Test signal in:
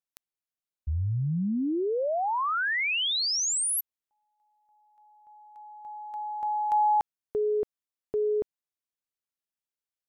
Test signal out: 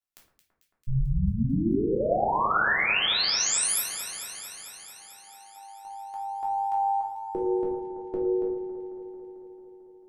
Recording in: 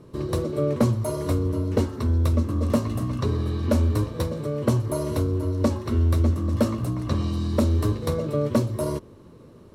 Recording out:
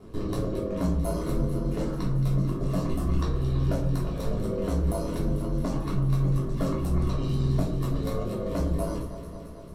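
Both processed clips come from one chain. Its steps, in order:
brickwall limiter −22.5 dBFS
reverb reduction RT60 0.93 s
ring modulation 52 Hz
delay that swaps between a low-pass and a high-pass 111 ms, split 1,800 Hz, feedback 85%, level −9.5 dB
rectangular room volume 370 cubic metres, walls furnished, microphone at 3.2 metres

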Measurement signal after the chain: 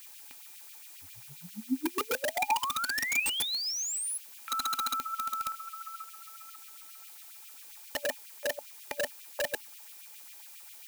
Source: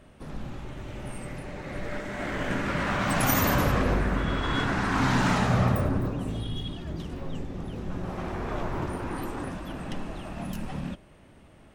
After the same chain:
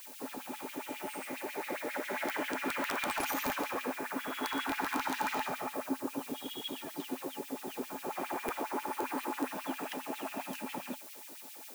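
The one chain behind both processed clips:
downward compressor 6 to 1, threshold −31 dBFS
background noise blue −48 dBFS
auto-filter high-pass sine 7.4 Hz 350–2,900 Hz
wrap-around overflow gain 23.5 dB
hollow resonant body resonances 260/860/2,400 Hz, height 12 dB, ringing for 75 ms
level −2 dB

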